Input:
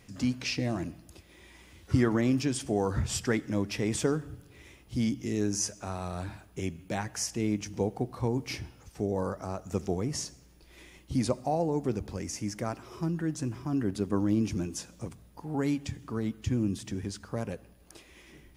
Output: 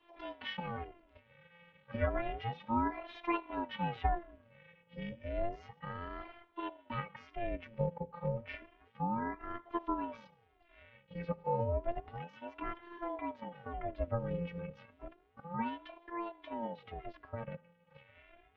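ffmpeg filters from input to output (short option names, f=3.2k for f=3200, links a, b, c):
-af "highpass=f=190:t=q:w=0.5412,highpass=f=190:t=q:w=1.307,lowpass=f=2.9k:t=q:w=0.5176,lowpass=f=2.9k:t=q:w=0.7071,lowpass=f=2.9k:t=q:w=1.932,afreqshift=-79,afftfilt=real='hypot(re,im)*cos(PI*b)':imag='0':win_size=512:overlap=0.75,aeval=exprs='val(0)*sin(2*PI*430*n/s+430*0.6/0.31*sin(2*PI*0.31*n/s))':c=same,volume=2dB"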